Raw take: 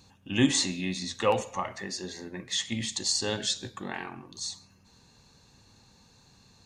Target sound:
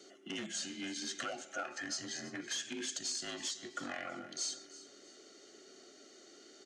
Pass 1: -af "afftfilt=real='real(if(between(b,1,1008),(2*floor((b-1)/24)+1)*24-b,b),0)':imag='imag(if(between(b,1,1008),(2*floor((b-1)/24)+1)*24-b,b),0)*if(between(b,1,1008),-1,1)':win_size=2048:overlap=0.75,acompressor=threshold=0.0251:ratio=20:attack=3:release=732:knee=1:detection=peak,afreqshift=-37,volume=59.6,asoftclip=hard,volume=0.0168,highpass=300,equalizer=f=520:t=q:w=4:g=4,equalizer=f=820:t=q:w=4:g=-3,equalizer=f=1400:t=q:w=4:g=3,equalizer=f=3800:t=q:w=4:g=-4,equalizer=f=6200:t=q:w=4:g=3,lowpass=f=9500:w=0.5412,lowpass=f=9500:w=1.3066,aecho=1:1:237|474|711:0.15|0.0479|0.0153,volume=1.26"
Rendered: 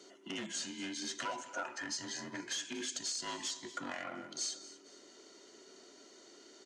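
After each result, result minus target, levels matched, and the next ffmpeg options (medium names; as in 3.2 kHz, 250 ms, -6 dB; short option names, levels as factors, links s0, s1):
echo 91 ms early; 1 kHz band +2.5 dB
-af "afftfilt=real='real(if(between(b,1,1008),(2*floor((b-1)/24)+1)*24-b,b),0)':imag='imag(if(between(b,1,1008),(2*floor((b-1)/24)+1)*24-b,b),0)*if(between(b,1,1008),-1,1)':win_size=2048:overlap=0.75,acompressor=threshold=0.0251:ratio=20:attack=3:release=732:knee=1:detection=peak,afreqshift=-37,volume=59.6,asoftclip=hard,volume=0.0168,highpass=300,equalizer=f=520:t=q:w=4:g=4,equalizer=f=820:t=q:w=4:g=-3,equalizer=f=1400:t=q:w=4:g=3,equalizer=f=3800:t=q:w=4:g=-4,equalizer=f=6200:t=q:w=4:g=3,lowpass=f=9500:w=0.5412,lowpass=f=9500:w=1.3066,aecho=1:1:328|656|984:0.15|0.0479|0.0153,volume=1.26"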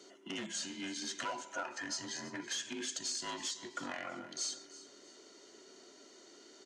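1 kHz band +2.5 dB
-af "afftfilt=real='real(if(between(b,1,1008),(2*floor((b-1)/24)+1)*24-b,b),0)':imag='imag(if(between(b,1,1008),(2*floor((b-1)/24)+1)*24-b,b),0)*if(between(b,1,1008),-1,1)':win_size=2048:overlap=0.75,acompressor=threshold=0.0251:ratio=20:attack=3:release=732:knee=1:detection=peak,asuperstop=centerf=1000:order=20:qfactor=5.1,afreqshift=-37,volume=59.6,asoftclip=hard,volume=0.0168,highpass=300,equalizer=f=520:t=q:w=4:g=4,equalizer=f=820:t=q:w=4:g=-3,equalizer=f=1400:t=q:w=4:g=3,equalizer=f=3800:t=q:w=4:g=-4,equalizer=f=6200:t=q:w=4:g=3,lowpass=f=9500:w=0.5412,lowpass=f=9500:w=1.3066,aecho=1:1:328|656|984:0.15|0.0479|0.0153,volume=1.26"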